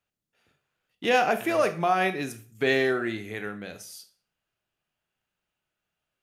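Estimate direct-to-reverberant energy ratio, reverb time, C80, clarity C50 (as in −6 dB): 9.0 dB, 0.40 s, 18.5 dB, 14.0 dB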